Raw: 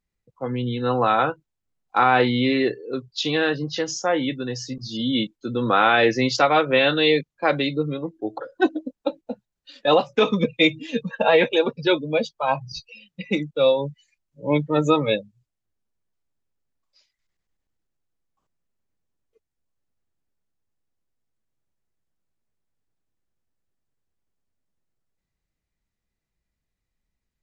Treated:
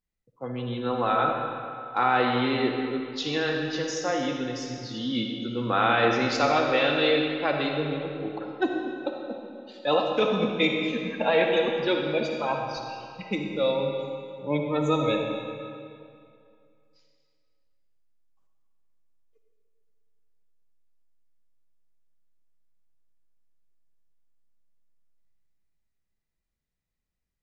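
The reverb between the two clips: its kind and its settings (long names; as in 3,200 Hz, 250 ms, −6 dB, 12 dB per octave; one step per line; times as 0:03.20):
comb and all-pass reverb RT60 2.4 s, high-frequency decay 0.8×, pre-delay 15 ms, DRR 1.5 dB
level −6.5 dB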